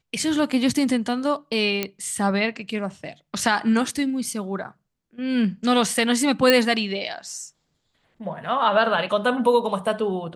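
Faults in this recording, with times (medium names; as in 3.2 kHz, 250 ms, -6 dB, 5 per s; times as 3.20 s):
1.83 s: pop -8 dBFS
6.50 s: pop -3 dBFS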